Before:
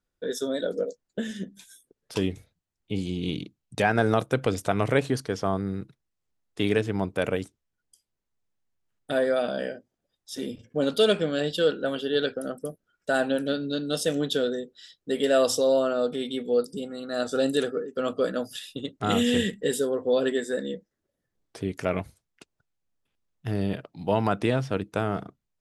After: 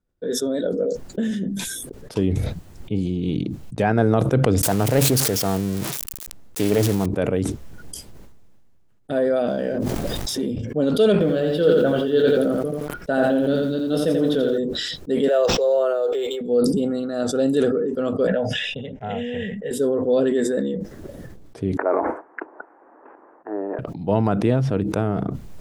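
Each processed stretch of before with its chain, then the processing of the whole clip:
4.63–7.06 s: zero-crossing glitches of -14.5 dBFS + loudspeaker Doppler distortion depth 0.29 ms
9.47–10.42 s: companding laws mixed up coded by mu + level flattener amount 100%
11.12–14.58 s: peaking EQ 7.2 kHz -9.5 dB 0.56 oct + doubling 23 ms -11 dB + bit-crushed delay 86 ms, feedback 35%, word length 8-bit, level -4 dB
15.28–16.41 s: steep high-pass 380 Hz 48 dB/octave + decimation joined by straight lines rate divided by 4×
18.27–19.71 s: low-pass 4.7 kHz 24 dB/octave + bass shelf 260 Hz -9 dB + static phaser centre 1.2 kHz, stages 6
21.77–23.79 s: elliptic band-pass 310–1700 Hz + peaking EQ 940 Hz +10 dB 0.95 oct
whole clip: tilt shelf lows +6.5 dB, about 910 Hz; decay stretcher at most 23 dB/s

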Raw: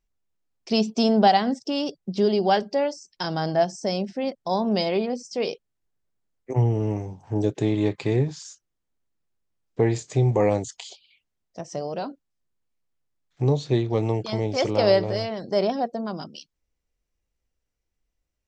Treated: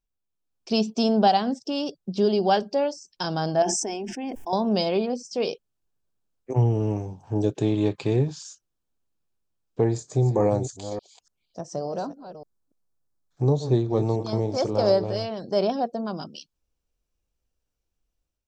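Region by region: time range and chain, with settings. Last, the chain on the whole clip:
3.62–4.53 s: static phaser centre 840 Hz, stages 8 + decay stretcher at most 27 dB/s
9.84–15.05 s: chunks repeated in reverse 288 ms, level -11 dB + peaking EQ 2.8 kHz -12.5 dB 0.72 oct
whole clip: peaking EQ 2 kHz -11 dB 0.24 oct; level rider gain up to 7 dB; trim -6.5 dB

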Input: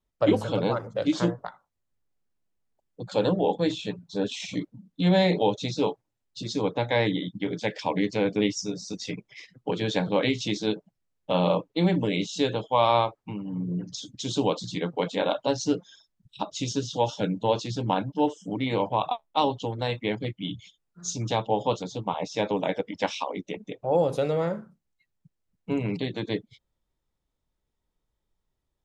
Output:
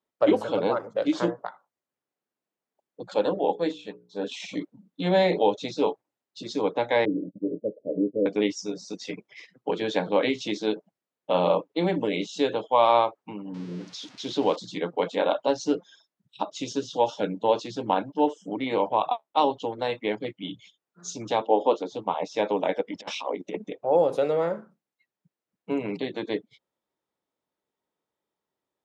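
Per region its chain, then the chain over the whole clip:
3.14–4.27 s: hum notches 60/120/180/240/300/360/420/480/540 Hz + upward expansion, over -35 dBFS
7.05–8.26 s: companding laws mixed up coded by A + steep low-pass 610 Hz 96 dB/octave + dynamic bell 290 Hz, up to +4 dB, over -38 dBFS, Q 7
13.54–14.56 s: zero-crossing glitches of -27 dBFS + low-pass 5.4 kHz 24 dB/octave
21.41–21.92 s: resonant high-pass 300 Hz, resonance Q 1.7 + distance through air 76 m
22.91–23.70 s: bass shelf 310 Hz +7 dB + compressor with a negative ratio -32 dBFS, ratio -0.5
whole clip: high-pass 300 Hz 12 dB/octave; treble shelf 2.9 kHz -9 dB; trim +3 dB

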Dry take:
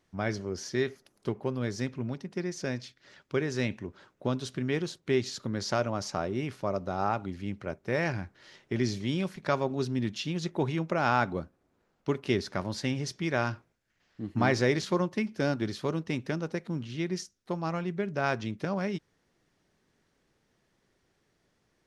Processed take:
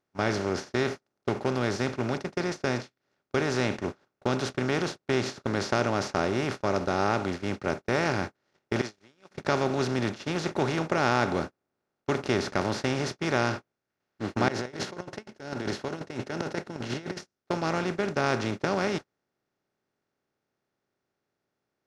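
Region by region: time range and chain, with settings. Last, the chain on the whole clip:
8.81–9.31 s: high-pass 1.3 kHz 6 dB/octave + compression, threshold -45 dBFS
14.48–17.19 s: compressor with a negative ratio -37 dBFS + tremolo saw up 5.7 Hz, depth 60% + comb of notches 1.2 kHz
whole clip: spectral levelling over time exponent 0.4; gate -27 dBFS, range -41 dB; trim -3 dB

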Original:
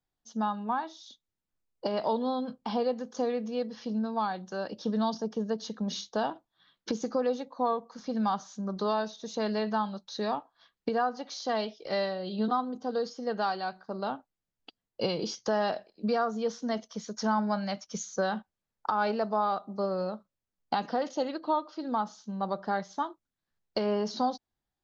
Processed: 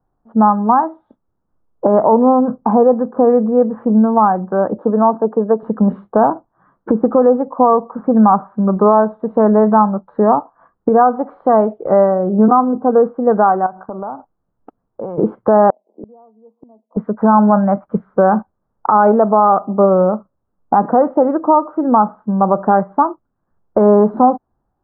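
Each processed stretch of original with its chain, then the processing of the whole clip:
4.78–5.63 s: high-pass 300 Hz + peaking EQ 2.1 kHz -6 dB 0.21 oct
13.66–15.18 s: dynamic bell 840 Hz, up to +6 dB, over -46 dBFS, Q 1.3 + compression 4:1, threshold -44 dBFS
15.70–16.97 s: elliptic band-pass 220–950 Hz + inverted gate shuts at -37 dBFS, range -35 dB
whole clip: steep low-pass 1.3 kHz 36 dB/octave; loudness maximiser +20.5 dB; trim -1 dB

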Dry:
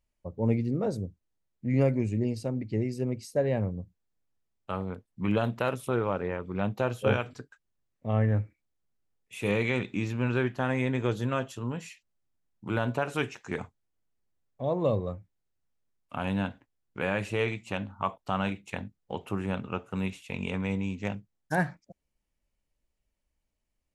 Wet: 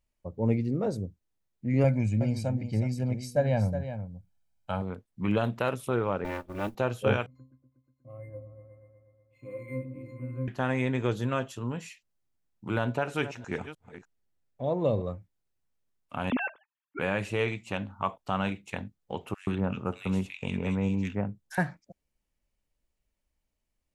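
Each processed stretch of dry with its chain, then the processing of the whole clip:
1.84–4.82 s: comb 1.3 ms, depth 74% + delay 367 ms -10 dB
6.24–6.75 s: comb filter that takes the minimum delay 3.4 ms + modulation noise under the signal 28 dB + transient shaper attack -6 dB, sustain -10 dB
7.26–10.48 s: pitch-class resonator C, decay 0.24 s + delay with an opening low-pass 121 ms, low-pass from 400 Hz, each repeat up 1 oct, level -6 dB + decimation joined by straight lines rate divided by 4×
12.84–15.02 s: chunks repeated in reverse 303 ms, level -13.5 dB + treble shelf 6.9 kHz -4 dB + band-stop 1.1 kHz, Q 9.8
16.30–16.99 s: formants replaced by sine waves + peaking EQ 740 Hz -6 dB 0.32 oct
19.34–21.58 s: bass shelf 430 Hz +3.5 dB + bands offset in time highs, lows 130 ms, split 1.8 kHz
whole clip: none

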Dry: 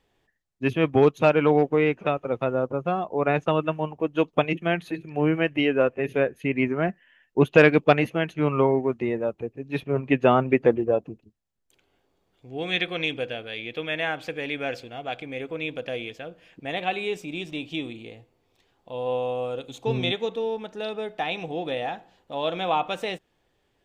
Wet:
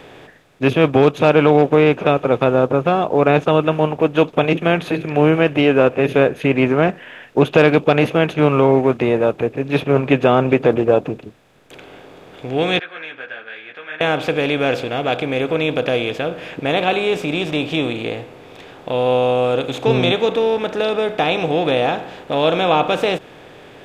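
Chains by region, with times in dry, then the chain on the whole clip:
12.79–14.01 s: band-pass filter 1.6 kHz, Q 11 + three-phase chorus
whole clip: spectral levelling over time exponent 0.6; dynamic bell 1.9 kHz, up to -5 dB, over -36 dBFS, Q 2.4; loudness maximiser +6 dB; trim -1 dB

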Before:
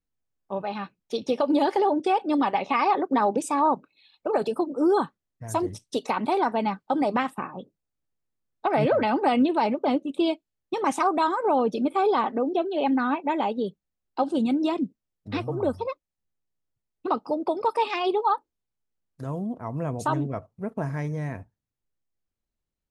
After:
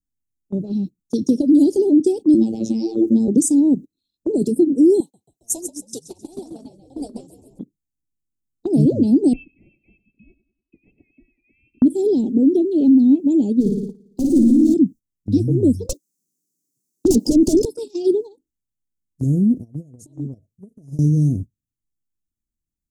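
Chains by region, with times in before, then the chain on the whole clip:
2.34–3.28 s: robot voice 112 Hz + level flattener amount 50%
5.00–7.59 s: resonant high-pass 840 Hz, resonance Q 1.8 + frequency-shifting echo 136 ms, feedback 56%, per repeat -66 Hz, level -6 dB + tape noise reduction on one side only encoder only
9.33–11.82 s: distance through air 450 m + feedback delay 97 ms, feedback 45%, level -15 dB + frequency inversion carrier 2.9 kHz
13.60–14.74 s: median filter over 3 samples + hard clipper -25 dBFS + flutter echo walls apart 9.7 m, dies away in 1.2 s
15.89–17.65 s: high-pass 150 Hz 24 dB/octave + overdrive pedal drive 29 dB, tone 7.8 kHz, clips at -12 dBFS
19.61–20.99 s: resonant low shelf 430 Hz -6.5 dB, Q 1.5 + compression 4:1, threshold -36 dBFS
whole clip: Chebyshev band-stop 310–6500 Hz, order 3; gate -42 dBFS, range -15 dB; loudness maximiser +21.5 dB; trim -5.5 dB

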